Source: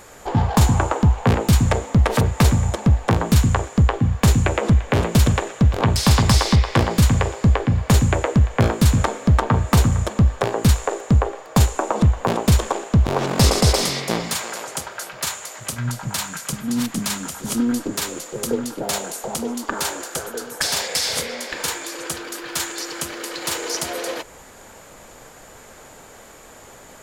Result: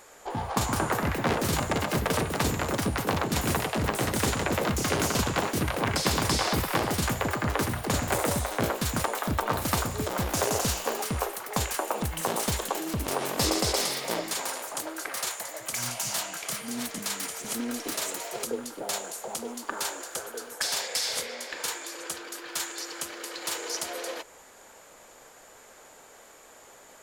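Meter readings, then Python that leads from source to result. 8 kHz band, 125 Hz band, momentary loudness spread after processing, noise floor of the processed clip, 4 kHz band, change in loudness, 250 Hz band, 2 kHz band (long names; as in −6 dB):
−4.5 dB, −15.5 dB, 9 LU, −52 dBFS, −5.5 dB, −9.0 dB, −10.5 dB, −4.0 dB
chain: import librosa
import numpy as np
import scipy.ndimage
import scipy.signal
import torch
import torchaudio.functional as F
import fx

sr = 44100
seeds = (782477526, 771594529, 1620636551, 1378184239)

y = fx.echo_pitch(x, sr, ms=302, semitones=5, count=3, db_per_echo=-3.0)
y = fx.bass_treble(y, sr, bass_db=-11, treble_db=1)
y = y * librosa.db_to_amplitude(-7.5)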